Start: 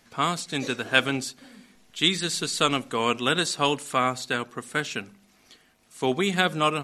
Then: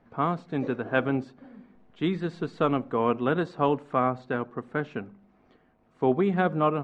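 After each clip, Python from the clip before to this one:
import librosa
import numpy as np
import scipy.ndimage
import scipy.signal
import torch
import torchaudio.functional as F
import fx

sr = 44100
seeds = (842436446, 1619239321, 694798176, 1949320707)

y = scipy.signal.sosfilt(scipy.signal.butter(2, 1000.0, 'lowpass', fs=sr, output='sos'), x)
y = y * 10.0 ** (2.0 / 20.0)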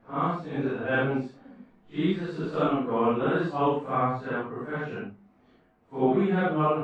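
y = fx.phase_scramble(x, sr, seeds[0], window_ms=200)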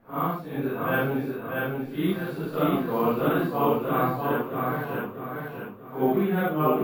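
y = fx.echo_feedback(x, sr, ms=638, feedback_pct=38, wet_db=-3.5)
y = np.repeat(y[::3], 3)[:len(y)]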